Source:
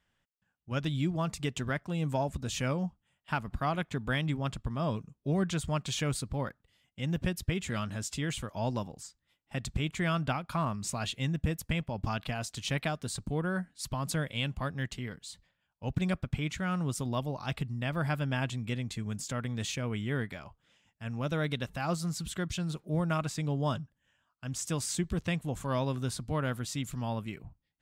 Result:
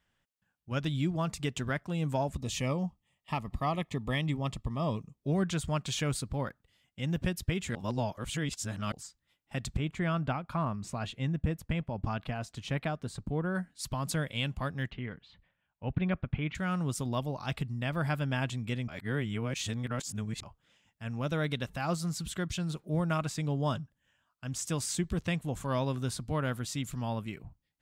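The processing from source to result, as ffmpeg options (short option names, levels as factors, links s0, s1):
-filter_complex "[0:a]asettb=1/sr,asplit=3[s0][s1][s2];[s0]atrim=end=2.354[s3];[s1]atrim=start=2.35:end=5.19,asetpts=PTS-STARTPTS,afade=t=in:d=0.004:c=qsin,afade=t=out:st=2.836:d=0.004:c=qsin,asuperstop=centerf=1500:order=8:qfactor=3.9[s4];[s2]atrim=start=5.186[s5];[s3][s4]acrossfade=d=0.004:c1=hsin:c2=qsin[s6];[s6][s5]acrossfade=d=0.004:c1=qsin:c2=hsin,asettb=1/sr,asplit=3[s7][s8][s9];[s7]atrim=end=9.774[s10];[s8]atrim=start=9.77:end=13.55,asetpts=PTS-STARTPTS,afade=t=in:d=0.004:c=qsin,afade=t=out:st=3.776:d=0.004:c=qsin,highshelf=f=3000:g=-12[s11];[s9]atrim=start=13.546[s12];[s10][s11]acrossfade=d=0.004:c1=hsin:c2=qsin[s13];[s13][s12]acrossfade=d=0.004:c1=qsin:c2=hsin,asettb=1/sr,asplit=3[s14][s15][s16];[s14]atrim=end=14.904[s17];[s15]atrim=start=14.9:end=16.55,asetpts=PTS-STARTPTS,afade=t=in:d=0.004:c=qsin,afade=t=out:st=1.646:d=0.004:c=qsin,lowpass=f=3000:w=0.5412,lowpass=f=3000:w=1.3066[s18];[s16]atrim=start=16.546[s19];[s17][s18]acrossfade=d=0.004:c1=hsin:c2=qsin[s20];[s20][s19]acrossfade=d=0.004:c1=qsin:c2=hsin,asplit=5[s21][s22][s23][s24][s25];[s21]atrim=end=7.752[s26];[s22]atrim=start=7.748:end=8.922,asetpts=PTS-STARTPTS,areverse[s27];[s23]atrim=start=8.918:end=18.882[s28];[s24]atrim=start=18.878:end=20.432,asetpts=PTS-STARTPTS,areverse[s29];[s25]atrim=start=20.428[s30];[s26][s27]acrossfade=d=0.004:c1=hsin:c2=hsin[s31];[s31][s28]acrossfade=d=0.004:c1=hsin:c2=hsin[s32];[s32][s29]acrossfade=d=0.004:c1=hsin:c2=hsin[s33];[s33][s30]acrossfade=d=0.004:c1=hsin:c2=hsin"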